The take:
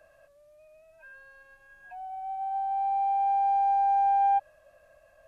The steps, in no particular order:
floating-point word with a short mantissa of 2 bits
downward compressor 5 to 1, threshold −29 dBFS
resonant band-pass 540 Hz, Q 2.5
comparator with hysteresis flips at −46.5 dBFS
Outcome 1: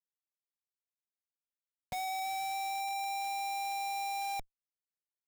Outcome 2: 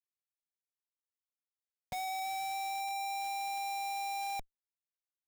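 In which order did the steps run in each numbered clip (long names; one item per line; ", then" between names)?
floating-point word with a short mantissa, then resonant band-pass, then comparator with hysteresis, then downward compressor
floating-point word with a short mantissa, then resonant band-pass, then downward compressor, then comparator with hysteresis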